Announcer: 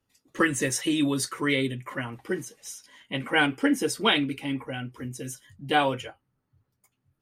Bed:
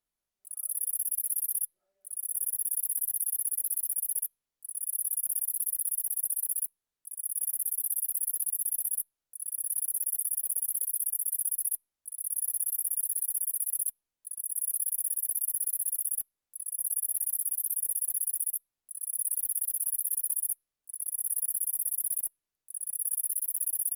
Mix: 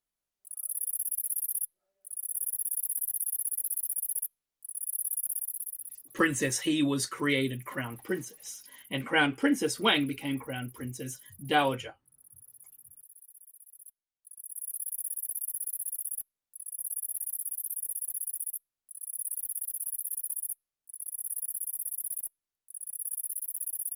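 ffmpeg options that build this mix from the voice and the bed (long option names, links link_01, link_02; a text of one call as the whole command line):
ffmpeg -i stem1.wav -i stem2.wav -filter_complex "[0:a]adelay=5800,volume=-2.5dB[link_01];[1:a]volume=17dB,afade=type=out:start_time=5.22:duration=0.84:silence=0.0841395,afade=type=in:start_time=13.78:duration=1.24:silence=0.11885[link_02];[link_01][link_02]amix=inputs=2:normalize=0" out.wav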